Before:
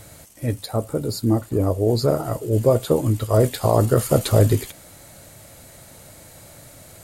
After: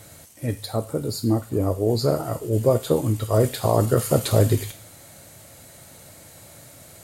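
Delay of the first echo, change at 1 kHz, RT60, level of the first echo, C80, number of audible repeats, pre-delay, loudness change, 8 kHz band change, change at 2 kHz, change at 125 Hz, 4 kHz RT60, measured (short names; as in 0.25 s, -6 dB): none, -1.5 dB, 0.55 s, none, 19.5 dB, none, 3 ms, -2.0 dB, -0.5 dB, -1.5 dB, -2.5 dB, 0.45 s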